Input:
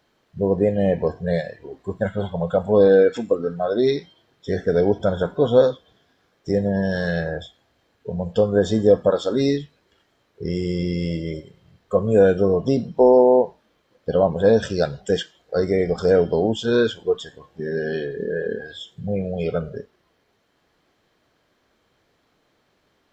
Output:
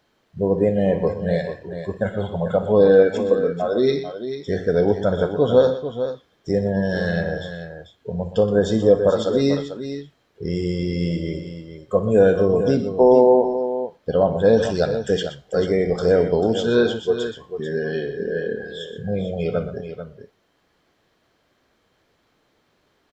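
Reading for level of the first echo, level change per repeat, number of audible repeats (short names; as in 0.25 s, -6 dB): -16.0 dB, no steady repeat, 3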